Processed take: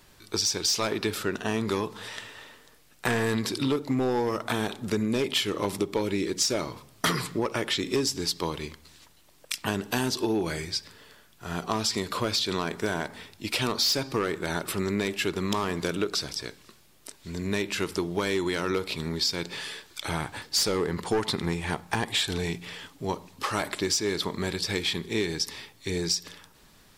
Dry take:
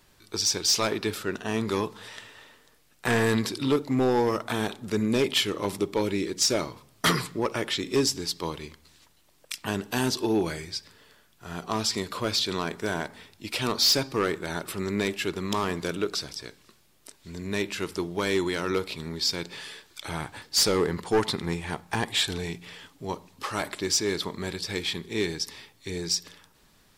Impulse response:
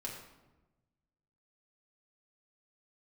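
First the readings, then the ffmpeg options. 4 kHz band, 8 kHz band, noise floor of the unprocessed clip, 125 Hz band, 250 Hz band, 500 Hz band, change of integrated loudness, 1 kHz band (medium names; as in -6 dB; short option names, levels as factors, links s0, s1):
-1.0 dB, -1.5 dB, -61 dBFS, 0.0 dB, -0.5 dB, -1.0 dB, -1.0 dB, -0.5 dB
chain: -af "acompressor=threshold=0.0447:ratio=6,volume=1.58"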